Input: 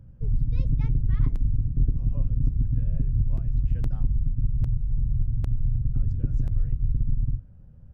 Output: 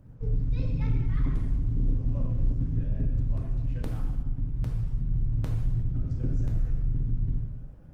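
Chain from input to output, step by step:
0:03.30–0:04.99: low-shelf EQ 330 Hz −3 dB
mains-hum notches 50/100/150/200/250 Hz
0:01.59–0:02.56: double-tracking delay 34 ms −4.5 dB
in parallel at −2 dB: downward compressor 5 to 1, threshold −30 dBFS, peak gain reduction 13.5 dB
on the sum: bass and treble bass −7 dB, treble +1 dB
dead-zone distortion −57.5 dBFS
reverb whose tail is shaped and stops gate 390 ms falling, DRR −2 dB
soft clipping −17 dBFS, distortion −18 dB
Opus 24 kbit/s 48,000 Hz

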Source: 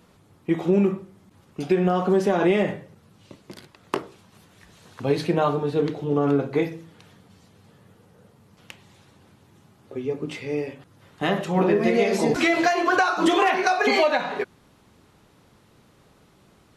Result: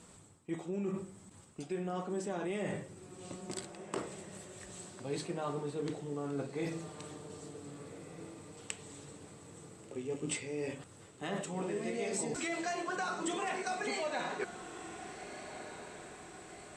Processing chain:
reversed playback
downward compressor 6 to 1, threshold −33 dBFS, peak gain reduction 17 dB
reversed playback
low-pass with resonance 8,000 Hz, resonance Q 14
feedback delay with all-pass diffusion 1,540 ms, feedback 51%, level −11 dB
level −2.5 dB

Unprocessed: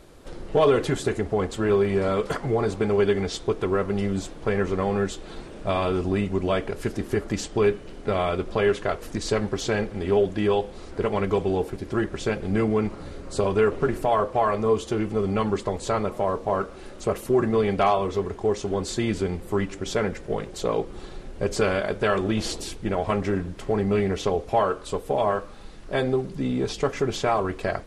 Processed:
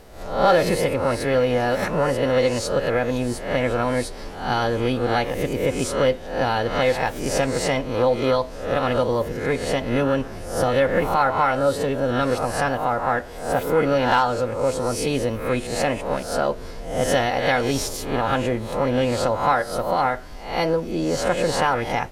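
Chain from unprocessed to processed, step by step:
peak hold with a rise ahead of every peak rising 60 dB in 0.69 s
speed change +26%
level +1 dB

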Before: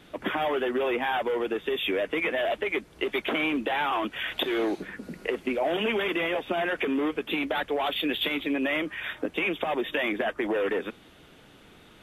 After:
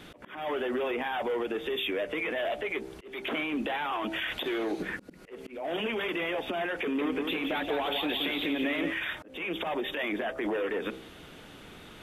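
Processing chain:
hum removal 65.39 Hz, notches 14
downward compressor, threshold −29 dBFS, peak gain reduction 6.5 dB
brickwall limiter −28.5 dBFS, peak gain reduction 11.5 dB
volume swells 281 ms
0:06.81–0:08.93: feedback echo with a swinging delay time 175 ms, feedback 47%, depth 86 cents, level −5.5 dB
level +5 dB

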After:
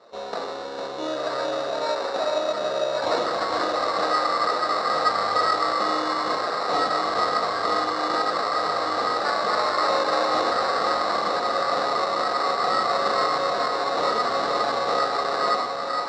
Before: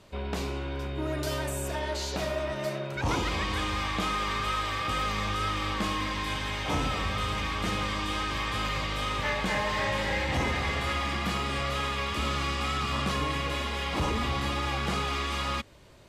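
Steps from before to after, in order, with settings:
delay that swaps between a low-pass and a high-pass 457 ms, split 1,900 Hz, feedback 86%, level −5 dB
on a send at −2 dB: convolution reverb RT60 0.35 s, pre-delay 7 ms
on the sum: sample-rate reduction 3,200 Hz, jitter 0%
loudspeaker in its box 360–6,100 Hz, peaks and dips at 490 Hz +9 dB, 690 Hz +8 dB, 1,200 Hz +8 dB, 2,400 Hz −10 dB, 3,900 Hz +9 dB
notch filter 1,000 Hz, Q 22

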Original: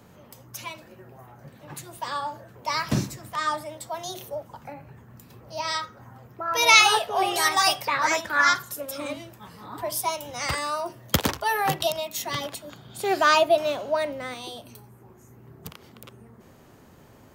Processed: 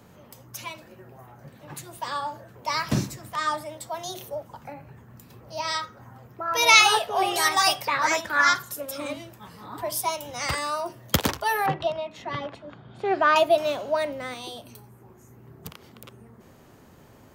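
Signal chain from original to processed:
0:11.66–0:13.36: low-pass filter 2,100 Hz 12 dB per octave

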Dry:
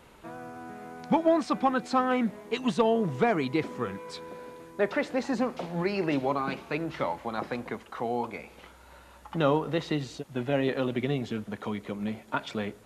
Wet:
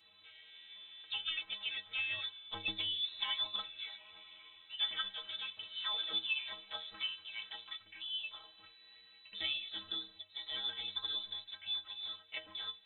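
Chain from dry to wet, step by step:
sound drawn into the spectrogram fall, 0:04.70–0:05.09, 320–960 Hz −32 dBFS
formants moved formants +4 semitones
voice inversion scrambler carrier 3,900 Hz
stiff-string resonator 95 Hz, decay 0.44 s, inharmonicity 0.03

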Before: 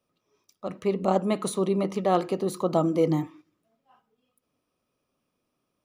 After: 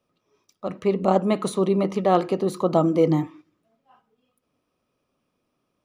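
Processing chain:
high-shelf EQ 6,700 Hz −8.5 dB
level +4 dB

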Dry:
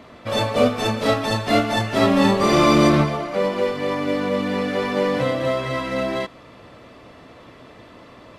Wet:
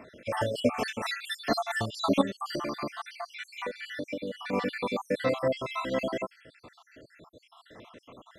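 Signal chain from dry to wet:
time-frequency cells dropped at random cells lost 65%
low-shelf EQ 150 Hz −7.5 dB
0:02.21–0:04.53: downward compressor 6 to 1, threshold −29 dBFS, peak gain reduction 15 dB
level −2.5 dB

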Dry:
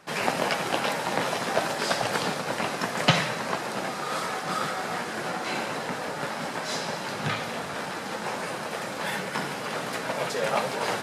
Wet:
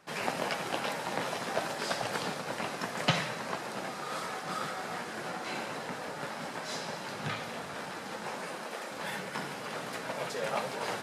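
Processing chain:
0:08.30–0:08.90: high-pass filter 110 Hz → 260 Hz 24 dB per octave
level −7 dB

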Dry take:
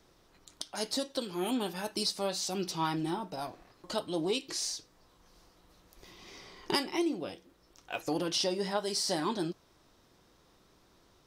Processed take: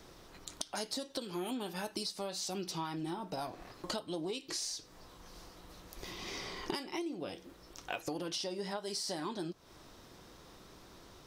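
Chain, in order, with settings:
downward compressor 12 to 1, threshold −44 dBFS, peak gain reduction 19.5 dB
level +8.5 dB

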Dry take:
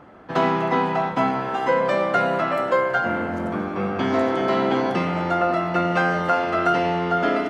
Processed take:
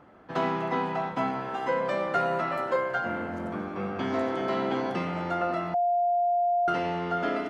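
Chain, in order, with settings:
0:02.06–0:02.76: double-tracking delay 13 ms −5 dB
0:05.74–0:06.68: beep over 702 Hz −14 dBFS
level −7.5 dB

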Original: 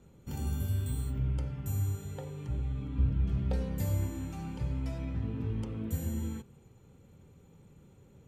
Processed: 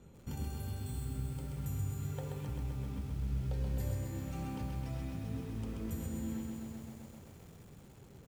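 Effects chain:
downward compressor 4 to 1, threshold −39 dBFS, peak gain reduction 14 dB
on a send: repeating echo 404 ms, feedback 43%, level −17.5 dB
on the sum: feedback echo at a low word length 130 ms, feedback 80%, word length 10 bits, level −3.5 dB
level +1 dB

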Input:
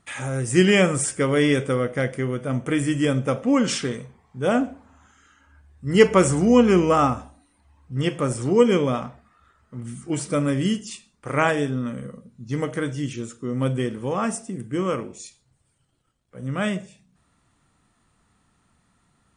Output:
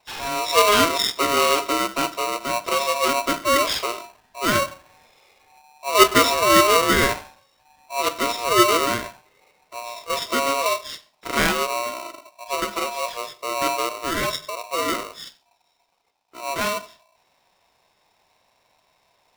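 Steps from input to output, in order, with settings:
hearing-aid frequency compression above 3,700 Hz 4 to 1
pitch vibrato 0.66 Hz 27 cents
ring modulator with a square carrier 830 Hz

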